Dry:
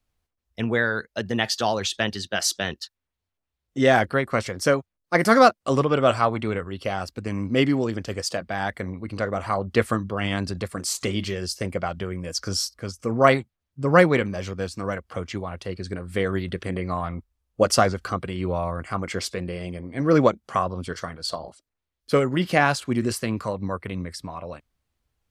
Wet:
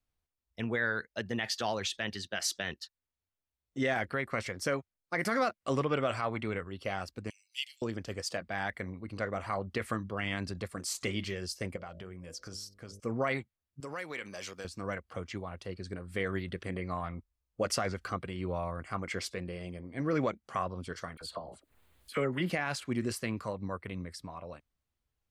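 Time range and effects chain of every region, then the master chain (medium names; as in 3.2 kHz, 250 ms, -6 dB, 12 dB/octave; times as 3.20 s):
7.30–7.82 s: elliptic high-pass 2.8 kHz, stop band 70 dB + treble shelf 8.6 kHz +10 dB
11.76–13.00 s: de-hum 49.86 Hz, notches 13 + compression 2.5:1, threshold -34 dBFS
13.80–14.65 s: high-pass 530 Hz 6 dB/octave + treble shelf 3.5 kHz +11.5 dB + compression, threshold -28 dBFS
21.17–22.50 s: peaking EQ 5.6 kHz -11.5 dB 0.55 oct + phase dispersion lows, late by 41 ms, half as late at 1.3 kHz + upward compressor, threshold -33 dBFS
whole clip: dynamic bell 2.1 kHz, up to +7 dB, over -40 dBFS, Q 1.8; peak limiter -11.5 dBFS; trim -9 dB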